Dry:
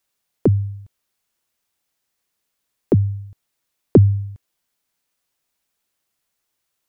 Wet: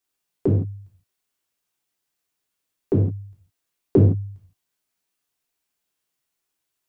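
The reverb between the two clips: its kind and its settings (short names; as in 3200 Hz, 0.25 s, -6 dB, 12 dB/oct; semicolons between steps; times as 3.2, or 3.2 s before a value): non-linear reverb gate 0.19 s falling, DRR -3.5 dB; gain -9 dB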